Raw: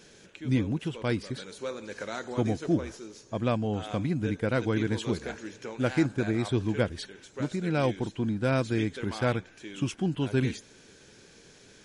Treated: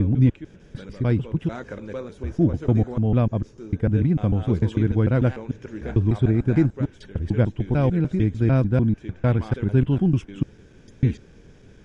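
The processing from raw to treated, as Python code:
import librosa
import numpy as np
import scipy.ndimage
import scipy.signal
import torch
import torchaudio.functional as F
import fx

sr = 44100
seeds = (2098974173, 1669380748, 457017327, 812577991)

y = fx.block_reorder(x, sr, ms=149.0, group=5)
y = fx.riaa(y, sr, side='playback')
y = fx.notch(y, sr, hz=4200.0, q=7.4)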